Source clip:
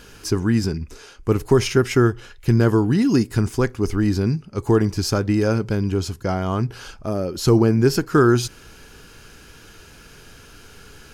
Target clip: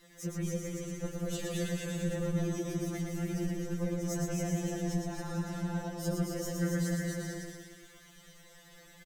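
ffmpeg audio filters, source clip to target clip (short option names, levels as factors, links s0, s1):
-filter_complex "[0:a]asplit=2[s0][s1];[s1]aecho=0:1:330|544.5|683.9|774.6|833.5:0.631|0.398|0.251|0.158|0.1[s2];[s0][s2]amix=inputs=2:normalize=0,asetrate=54243,aresample=44100,acrossover=split=190|3000[s3][s4][s5];[s4]acompressor=threshold=0.0447:ratio=2.5[s6];[s3][s6][s5]amix=inputs=3:normalize=0,afftfilt=real='hypot(re,im)*cos(2*PI*random(0))':imag='hypot(re,im)*sin(2*PI*random(1))':win_size=512:overlap=0.75,asplit=2[s7][s8];[s8]aecho=0:1:115|230|345|460|575|690|805|920:0.631|0.372|0.22|0.13|0.0765|0.0451|0.0266|0.0157[s9];[s7][s9]amix=inputs=2:normalize=0,afftfilt=real='re*2.83*eq(mod(b,8),0)':imag='im*2.83*eq(mod(b,8),0)':win_size=2048:overlap=0.75,volume=0.473"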